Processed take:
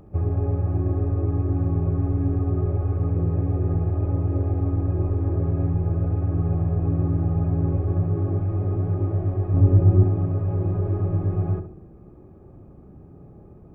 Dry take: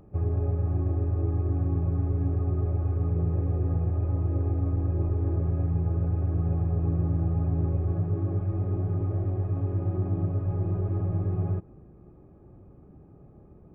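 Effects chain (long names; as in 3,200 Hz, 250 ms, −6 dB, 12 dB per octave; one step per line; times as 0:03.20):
0:09.54–0:10.04: low-shelf EQ 400 Hz +9 dB
feedback echo with a low-pass in the loop 68 ms, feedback 44%, low-pass 1,200 Hz, level −7 dB
level +4.5 dB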